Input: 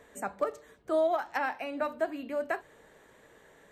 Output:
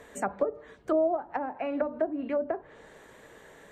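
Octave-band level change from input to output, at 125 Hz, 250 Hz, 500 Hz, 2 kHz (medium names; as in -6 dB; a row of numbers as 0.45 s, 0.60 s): no reading, +6.0 dB, +2.0 dB, -5.5 dB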